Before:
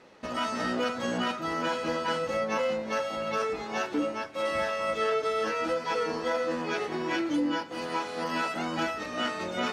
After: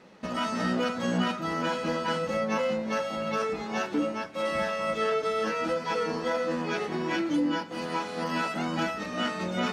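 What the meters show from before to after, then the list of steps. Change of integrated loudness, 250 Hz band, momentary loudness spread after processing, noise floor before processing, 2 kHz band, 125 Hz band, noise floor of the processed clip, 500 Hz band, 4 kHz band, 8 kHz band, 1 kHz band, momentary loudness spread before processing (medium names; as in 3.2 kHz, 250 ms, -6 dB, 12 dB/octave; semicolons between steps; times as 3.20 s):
+0.5 dB, +3.0 dB, 4 LU, -39 dBFS, 0.0 dB, +6.5 dB, -37 dBFS, +0.5 dB, 0.0 dB, 0.0 dB, 0.0 dB, 4 LU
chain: peaking EQ 190 Hz +11 dB 0.44 oct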